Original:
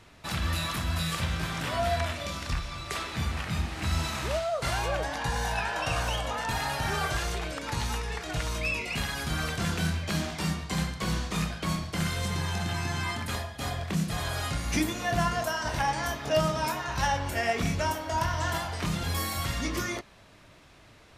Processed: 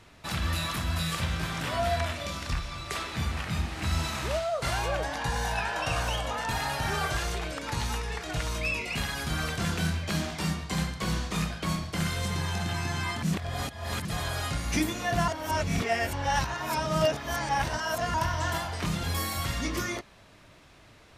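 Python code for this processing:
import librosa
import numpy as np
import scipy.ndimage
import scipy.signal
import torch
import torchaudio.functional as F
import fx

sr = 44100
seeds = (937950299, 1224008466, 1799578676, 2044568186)

y = fx.edit(x, sr, fx.reverse_span(start_s=13.23, length_s=0.82),
    fx.reverse_span(start_s=15.28, length_s=2.86), tone=tone)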